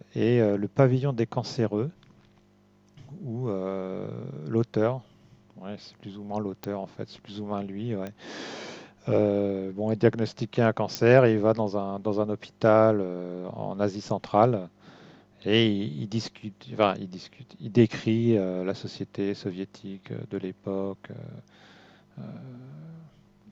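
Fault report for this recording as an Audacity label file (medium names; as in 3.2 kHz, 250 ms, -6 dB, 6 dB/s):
6.640000	6.640000	pop -18 dBFS
8.070000	8.070000	pop -22 dBFS
10.950000	10.950000	pop -12 dBFS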